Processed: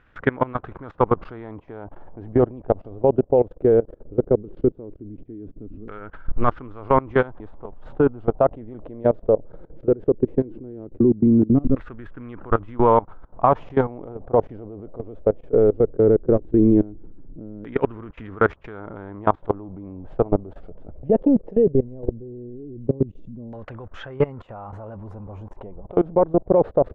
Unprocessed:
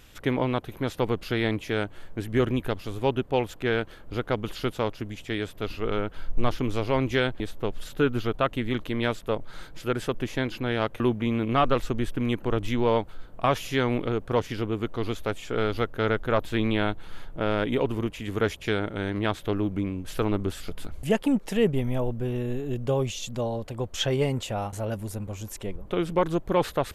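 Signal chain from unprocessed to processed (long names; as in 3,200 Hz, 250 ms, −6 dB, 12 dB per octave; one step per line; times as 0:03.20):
auto-filter low-pass saw down 0.17 Hz 260–1,600 Hz
output level in coarse steps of 22 dB
level +8 dB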